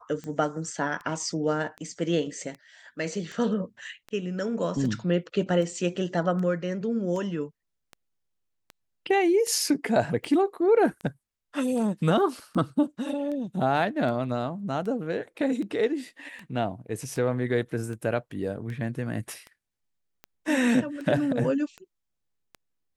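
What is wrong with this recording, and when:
scratch tick 78 rpm −26 dBFS

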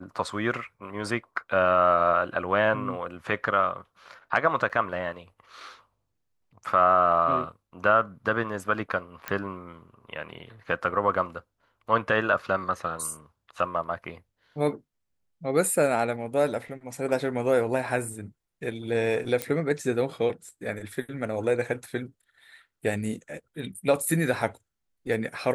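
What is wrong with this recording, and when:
0:04.69–0:04.70: drop-out 7.9 ms
0:09.28: click −14 dBFS
0:19.42: click −11 dBFS

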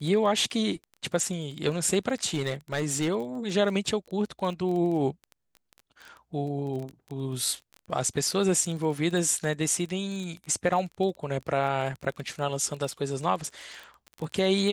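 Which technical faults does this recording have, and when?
surface crackle 18 per second −33 dBFS
0:02.34–0:03.09: clipping −22 dBFS

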